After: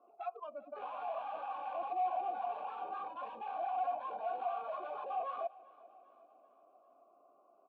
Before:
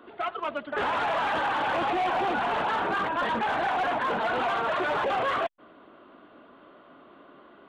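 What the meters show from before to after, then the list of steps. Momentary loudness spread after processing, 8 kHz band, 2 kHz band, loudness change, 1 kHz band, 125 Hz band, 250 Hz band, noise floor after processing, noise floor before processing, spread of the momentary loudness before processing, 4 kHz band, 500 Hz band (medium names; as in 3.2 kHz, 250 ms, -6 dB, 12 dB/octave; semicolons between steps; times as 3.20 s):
9 LU, no reading, -26.0 dB, -12.5 dB, -10.5 dB, under -30 dB, -25.5 dB, -67 dBFS, -54 dBFS, 5 LU, under -25 dB, -12.0 dB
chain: local Wiener filter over 25 samples; low-pass 3.1 kHz 6 dB/octave; spectral noise reduction 18 dB; bass shelf 160 Hz -6.5 dB; reverse; compression 6:1, threshold -44 dBFS, peak gain reduction 16 dB; reverse; peak limiter -44 dBFS, peak gain reduction 11.5 dB; vowel filter a; on a send: feedback delay 394 ms, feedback 56%, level -21 dB; on the sum: trim +17 dB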